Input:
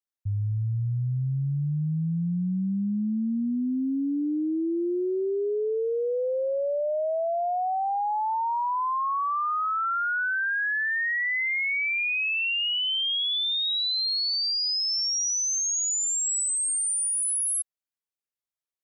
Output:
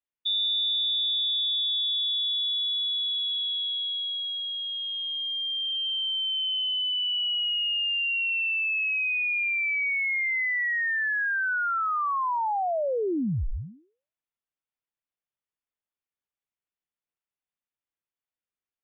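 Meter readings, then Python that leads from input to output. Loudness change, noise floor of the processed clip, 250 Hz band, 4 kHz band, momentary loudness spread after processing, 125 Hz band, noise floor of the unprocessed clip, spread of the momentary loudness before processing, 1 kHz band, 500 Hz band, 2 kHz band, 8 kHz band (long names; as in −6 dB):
+0.5 dB, below −85 dBFS, −11.5 dB, +4.0 dB, 5 LU, −12.0 dB, below −85 dBFS, 5 LU, −4.0 dB, −8.0 dB, +1.0 dB, below −40 dB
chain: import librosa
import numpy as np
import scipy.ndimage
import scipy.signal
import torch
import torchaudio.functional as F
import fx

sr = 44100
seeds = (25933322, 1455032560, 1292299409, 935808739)

y = fx.peak_eq(x, sr, hz=330.0, db=-6.0, octaves=0.77)
y = fx.freq_invert(y, sr, carrier_hz=3600)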